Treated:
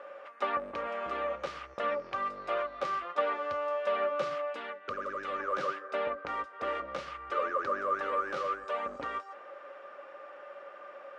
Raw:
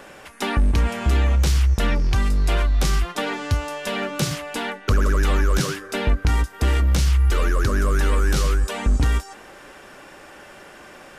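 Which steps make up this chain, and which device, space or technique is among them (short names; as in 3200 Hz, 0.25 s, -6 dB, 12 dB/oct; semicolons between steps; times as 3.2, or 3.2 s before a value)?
4.51–5.4 dynamic EQ 800 Hz, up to -8 dB, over -41 dBFS, Q 0.73; tin-can telephone (BPF 500–2200 Hz; small resonant body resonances 560/1200 Hz, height 17 dB, ringing for 75 ms); gain -8.5 dB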